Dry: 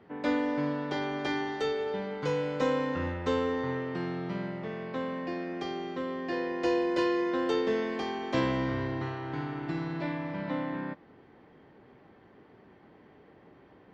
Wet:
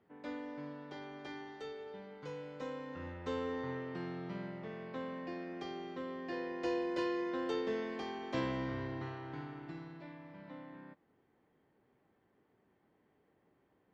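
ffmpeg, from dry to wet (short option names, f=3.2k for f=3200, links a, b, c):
-af "volume=-8dB,afade=t=in:st=2.85:d=0.71:silence=0.446684,afade=t=out:st=9.16:d=0.86:silence=0.354813"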